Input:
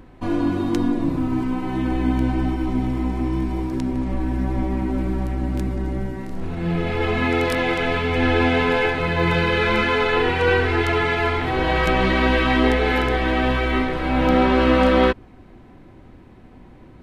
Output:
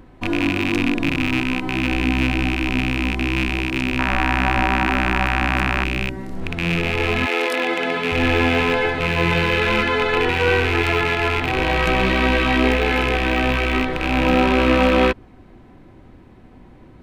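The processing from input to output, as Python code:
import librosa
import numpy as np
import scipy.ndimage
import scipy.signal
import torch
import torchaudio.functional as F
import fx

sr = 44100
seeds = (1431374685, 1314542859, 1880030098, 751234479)

y = fx.rattle_buzz(x, sr, strikes_db=-25.0, level_db=-10.0)
y = fx.band_shelf(y, sr, hz=1100.0, db=12.5, octaves=1.7, at=(3.99, 5.84))
y = fx.highpass(y, sr, hz=fx.line((7.25, 410.0), (8.11, 140.0)), slope=24, at=(7.25, 8.11), fade=0.02)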